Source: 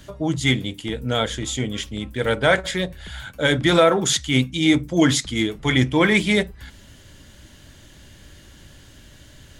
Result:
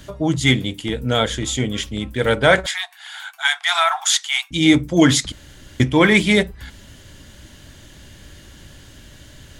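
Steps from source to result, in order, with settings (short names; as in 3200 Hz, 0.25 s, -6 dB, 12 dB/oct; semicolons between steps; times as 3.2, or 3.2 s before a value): 2.66–4.51 brick-wall FIR high-pass 670 Hz; 5.32–5.8 room tone; gain +3.5 dB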